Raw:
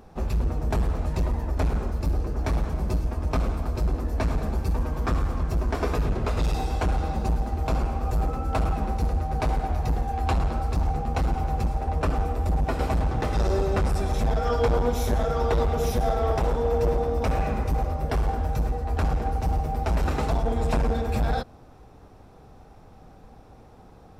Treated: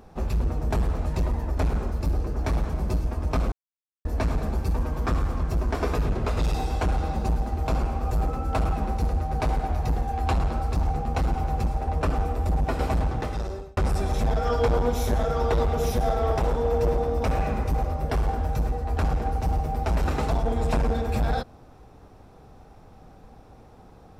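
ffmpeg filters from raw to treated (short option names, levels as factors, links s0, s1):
-filter_complex "[0:a]asplit=4[s0][s1][s2][s3];[s0]atrim=end=3.52,asetpts=PTS-STARTPTS,afade=t=out:st=3.516:d=0.004:c=hsin[s4];[s1]atrim=start=3.52:end=4.05,asetpts=PTS-STARTPTS,volume=0[s5];[s2]atrim=start=4.05:end=13.77,asetpts=PTS-STARTPTS,afade=t=in:d=0.004:c=hsin,afade=t=out:st=8.97:d=0.75[s6];[s3]atrim=start=13.77,asetpts=PTS-STARTPTS,afade=t=in:d=0.004:c=hsin[s7];[s4][s5][s6][s7]concat=n=4:v=0:a=1"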